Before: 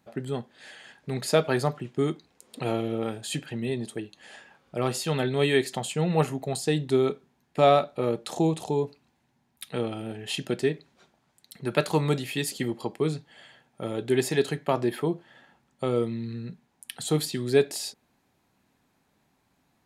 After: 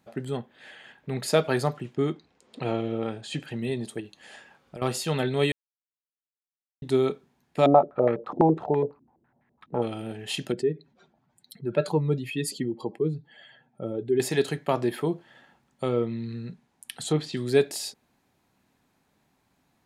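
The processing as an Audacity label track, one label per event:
0.370000	1.230000	high-order bell 7 kHz -9 dB
1.950000	3.400000	distance through air 95 m
4.000000	4.820000	compression, threshold -35 dBFS
5.520000	6.820000	mute
7.660000	9.820000	step-sequenced low-pass 12 Hz 300–1900 Hz
10.520000	14.200000	spectral contrast enhancement exponent 1.7
15.860000	17.370000	low-pass that closes with the level closes to 2.8 kHz, closed at -21 dBFS

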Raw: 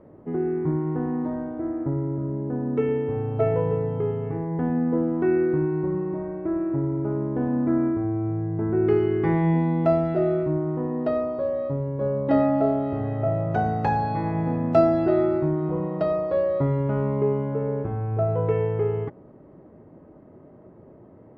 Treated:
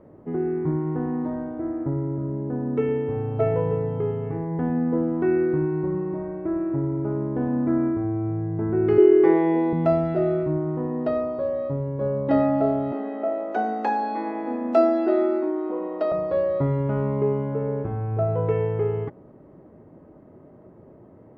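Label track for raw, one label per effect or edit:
8.980000	9.730000	resonant high-pass 390 Hz, resonance Q 3.4
12.920000	16.120000	steep high-pass 210 Hz 96 dB/octave

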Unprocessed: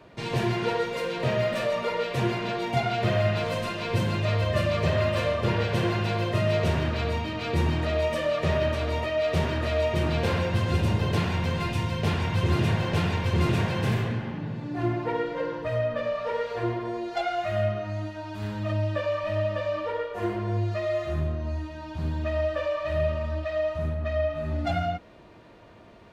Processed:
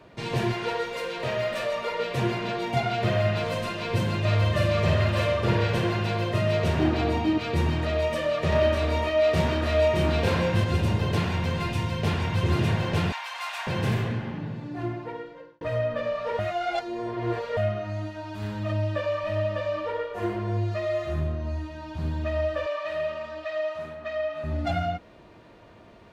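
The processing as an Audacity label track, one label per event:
0.520000	2.000000	peaking EQ 170 Hz -8.5 dB 2.1 oct
4.200000	5.780000	doubling 49 ms -4 dB
6.790000	7.380000	small resonant body resonances 320/750 Hz, height 14 dB
8.490000	10.640000	doubling 29 ms -2.5 dB
13.120000	13.670000	steep high-pass 720 Hz 48 dB/octave
14.400000	15.610000	fade out
16.390000	17.570000	reverse
22.660000	24.440000	frequency weighting A

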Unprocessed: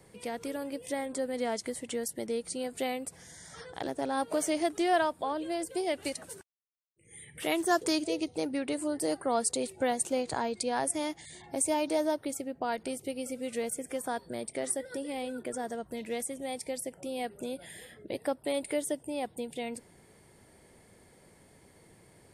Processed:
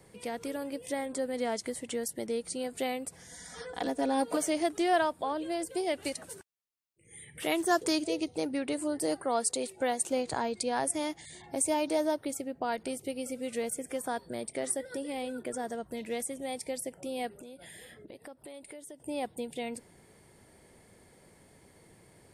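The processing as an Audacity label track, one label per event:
3.310000	4.370000	comb 4.1 ms, depth 92%
9.250000	10.090000	bass shelf 150 Hz -11.5 dB
17.330000	19.000000	compression 5:1, threshold -45 dBFS

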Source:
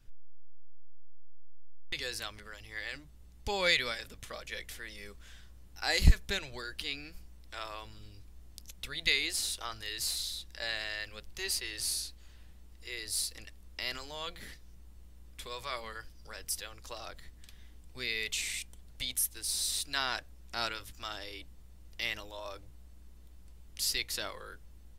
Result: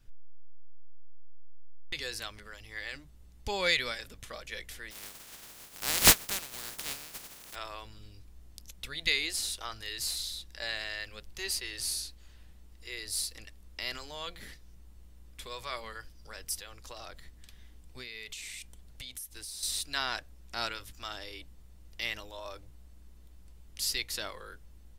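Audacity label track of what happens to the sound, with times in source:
4.900000	7.540000	spectral contrast reduction exponent 0.13
16.580000	19.630000	compression, threshold -39 dBFS

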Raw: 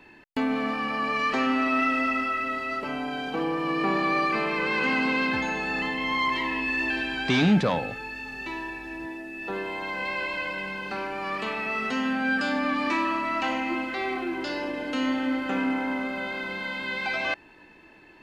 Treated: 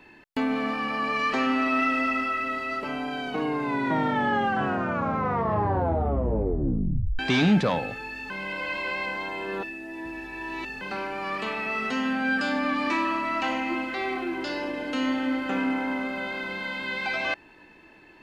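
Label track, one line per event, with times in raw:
3.180000	3.180000	tape stop 4.01 s
8.300000	10.810000	reverse

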